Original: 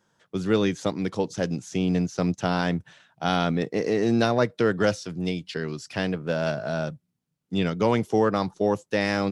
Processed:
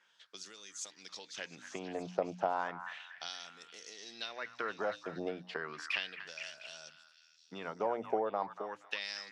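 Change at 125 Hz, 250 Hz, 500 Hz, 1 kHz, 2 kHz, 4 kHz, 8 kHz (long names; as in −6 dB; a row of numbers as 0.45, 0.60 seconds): −27.5, −23.0, −14.5, −9.5, −10.0, −8.5, −6.5 decibels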